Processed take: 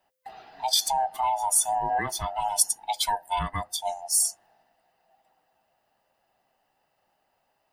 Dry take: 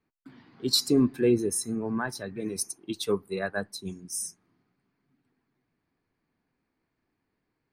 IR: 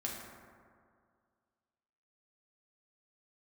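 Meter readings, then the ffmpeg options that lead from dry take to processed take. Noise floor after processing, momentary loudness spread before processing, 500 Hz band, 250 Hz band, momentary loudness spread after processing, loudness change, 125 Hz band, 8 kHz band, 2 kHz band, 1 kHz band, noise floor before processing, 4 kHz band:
−74 dBFS, 12 LU, −7.0 dB, −18.5 dB, 8 LU, +3.0 dB, −5.0 dB, +9.0 dB, −1.0 dB, +17.5 dB, −81 dBFS, +2.5 dB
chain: -af "afftfilt=real='real(if(lt(b,1008),b+24*(1-2*mod(floor(b/24),2)),b),0)':imag='imag(if(lt(b,1008),b+24*(1-2*mod(floor(b/24),2)),b),0)':win_size=2048:overlap=0.75,highshelf=frequency=5300:gain=-10.5,alimiter=level_in=0.5dB:limit=-24dB:level=0:latency=1:release=213,volume=-0.5dB,aemphasis=mode=production:type=75kf,volume=6dB"

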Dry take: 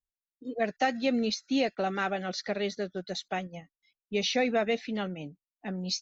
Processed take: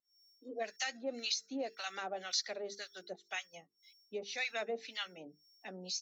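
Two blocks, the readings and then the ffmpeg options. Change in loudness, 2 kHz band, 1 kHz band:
−9.0 dB, −7.0 dB, −12.5 dB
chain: -filter_complex "[0:a]aderivative,bandreject=frequency=50:width_type=h:width=6,bandreject=frequency=100:width_type=h:width=6,bandreject=frequency=150:width_type=h:width=6,bandreject=frequency=200:width_type=h:width=6,bandreject=frequency=250:width_type=h:width=6,bandreject=frequency=300:width_type=h:width=6,bandreject=frequency=350:width_type=h:width=6,bandreject=frequency=400:width_type=h:width=6,bandreject=frequency=450:width_type=h:width=6,asplit=2[link_01][link_02];[link_02]acompressor=threshold=-56dB:ratio=6,volume=-2.5dB[link_03];[link_01][link_03]amix=inputs=2:normalize=0,alimiter=level_in=8dB:limit=-24dB:level=0:latency=1:release=121,volume=-8dB,acrossover=split=210|820[link_04][link_05][link_06];[link_05]acontrast=71[link_07];[link_04][link_07][link_06]amix=inputs=3:normalize=0,aeval=exprs='val(0)+0.000224*sin(2*PI*5500*n/s)':channel_layout=same,acrossover=split=1000[link_08][link_09];[link_08]aeval=exprs='val(0)*(1-1/2+1/2*cos(2*PI*1.9*n/s))':channel_layout=same[link_10];[link_09]aeval=exprs='val(0)*(1-1/2-1/2*cos(2*PI*1.9*n/s))':channel_layout=same[link_11];[link_10][link_11]amix=inputs=2:normalize=0,volume=9dB"

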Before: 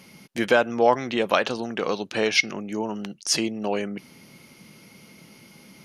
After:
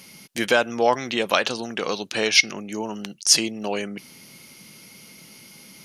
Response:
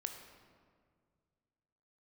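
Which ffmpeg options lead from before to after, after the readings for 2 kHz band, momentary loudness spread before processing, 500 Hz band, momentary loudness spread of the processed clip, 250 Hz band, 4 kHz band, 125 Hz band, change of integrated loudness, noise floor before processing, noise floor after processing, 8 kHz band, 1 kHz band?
+2.5 dB, 11 LU, −1.0 dB, 14 LU, −1.5 dB, +6.0 dB, −1.5 dB, +2.5 dB, −51 dBFS, −48 dBFS, +8.0 dB, −0.5 dB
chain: -af "highshelf=frequency=2700:gain=11,volume=-1.5dB"

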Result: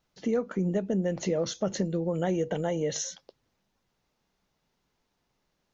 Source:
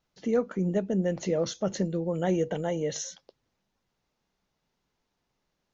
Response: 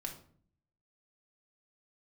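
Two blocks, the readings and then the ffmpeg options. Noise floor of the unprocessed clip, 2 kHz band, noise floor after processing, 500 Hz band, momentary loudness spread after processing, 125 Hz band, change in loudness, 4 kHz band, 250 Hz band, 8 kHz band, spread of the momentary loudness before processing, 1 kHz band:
−80 dBFS, 0.0 dB, −78 dBFS, −1.0 dB, 3 LU, −0.5 dB, −0.5 dB, +1.5 dB, −0.5 dB, can't be measured, 4 LU, −0.5 dB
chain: -af "acompressor=threshold=-27dB:ratio=3,volume=2.5dB"

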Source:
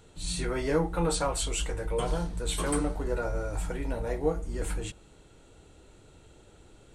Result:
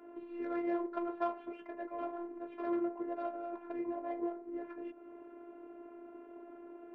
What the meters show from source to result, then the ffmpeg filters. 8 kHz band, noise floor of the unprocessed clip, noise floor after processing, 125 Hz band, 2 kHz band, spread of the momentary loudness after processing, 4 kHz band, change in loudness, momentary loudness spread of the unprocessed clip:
below −40 dB, −57 dBFS, −54 dBFS, below −35 dB, −13.5 dB, 16 LU, below −25 dB, −8.5 dB, 6 LU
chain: -af "lowshelf=frequency=340:gain=7,acompressor=threshold=-35dB:ratio=8,highpass=frequency=170:width_type=q:width=0.5412,highpass=frequency=170:width_type=q:width=1.307,lowpass=frequency=2500:width_type=q:width=0.5176,lowpass=frequency=2500:width_type=q:width=0.7071,lowpass=frequency=2500:width_type=q:width=1.932,afreqshift=73,adynamicsmooth=sensitivity=4:basefreq=1500,afftfilt=real='hypot(re,im)*cos(PI*b)':imag='0':win_size=512:overlap=0.75,volume=9dB"

